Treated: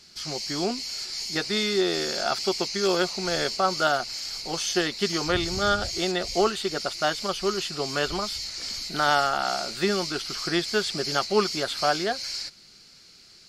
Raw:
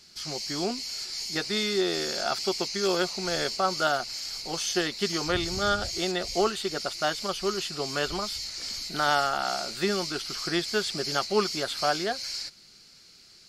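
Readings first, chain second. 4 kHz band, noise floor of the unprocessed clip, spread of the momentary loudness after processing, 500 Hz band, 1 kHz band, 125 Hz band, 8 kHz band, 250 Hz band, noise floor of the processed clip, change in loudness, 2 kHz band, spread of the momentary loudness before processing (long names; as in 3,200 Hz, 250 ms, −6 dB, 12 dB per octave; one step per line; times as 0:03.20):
+2.0 dB, −54 dBFS, 7 LU, +2.5 dB, +2.5 dB, +2.5 dB, +1.0 dB, +2.5 dB, −52 dBFS, +2.0 dB, +2.5 dB, 6 LU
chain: high-shelf EQ 9,400 Hz −4.5 dB
level +2.5 dB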